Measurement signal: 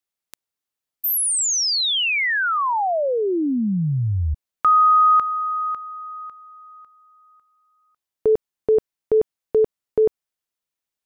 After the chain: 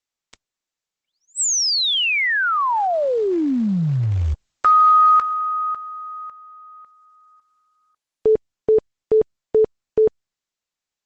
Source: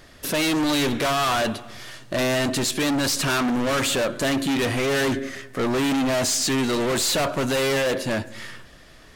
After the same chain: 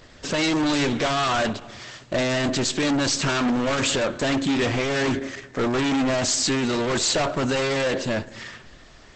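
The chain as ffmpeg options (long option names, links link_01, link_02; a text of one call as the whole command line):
ffmpeg -i in.wav -af "volume=1.5dB" -ar 48000 -c:a libopus -b:a 12k out.opus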